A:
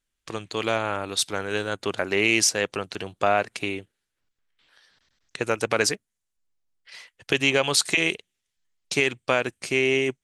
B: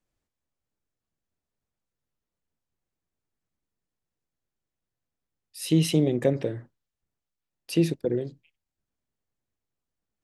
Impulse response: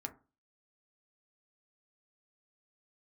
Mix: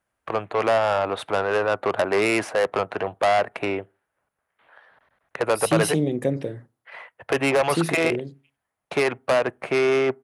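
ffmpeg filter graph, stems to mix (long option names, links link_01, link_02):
-filter_complex "[0:a]firequalizer=gain_entry='entry(290,0);entry(640,14);entry(5100,-26)':delay=0.05:min_phase=1,acrossover=split=350|3000[link_01][link_02][link_03];[link_02]acompressor=threshold=-17dB:ratio=2[link_04];[link_01][link_04][link_03]amix=inputs=3:normalize=0,asoftclip=type=tanh:threshold=-18.5dB,volume=2.5dB,asplit=2[link_05][link_06];[link_06]volume=-18dB[link_07];[1:a]volume=-2.5dB,asplit=2[link_08][link_09];[link_09]volume=-10.5dB[link_10];[2:a]atrim=start_sample=2205[link_11];[link_07][link_10]amix=inputs=2:normalize=0[link_12];[link_12][link_11]afir=irnorm=-1:irlink=0[link_13];[link_05][link_08][link_13]amix=inputs=3:normalize=0,highpass=64,equalizer=frequency=10000:width_type=o:width=0.25:gain=13.5"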